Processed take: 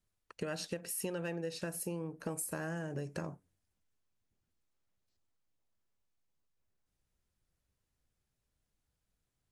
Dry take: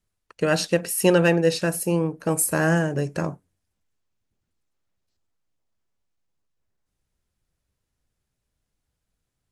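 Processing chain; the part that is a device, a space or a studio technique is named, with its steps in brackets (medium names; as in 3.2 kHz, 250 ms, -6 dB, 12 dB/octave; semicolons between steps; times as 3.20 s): serial compression, leveller first (compression 2:1, threshold -23 dBFS, peak gain reduction 6.5 dB; compression 4:1, threshold -32 dBFS, peak gain reduction 12 dB); trim -5 dB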